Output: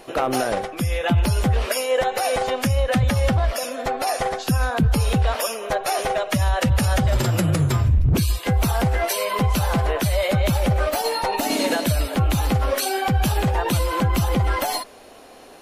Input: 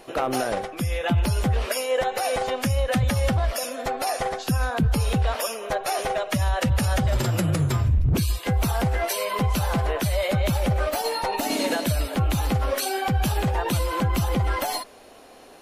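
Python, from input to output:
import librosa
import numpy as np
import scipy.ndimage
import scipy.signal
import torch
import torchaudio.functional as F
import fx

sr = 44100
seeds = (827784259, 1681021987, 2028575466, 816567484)

y = fx.high_shelf(x, sr, hz=6200.0, db=-4.5, at=(2.67, 4.08))
y = F.gain(torch.from_numpy(y), 3.0).numpy()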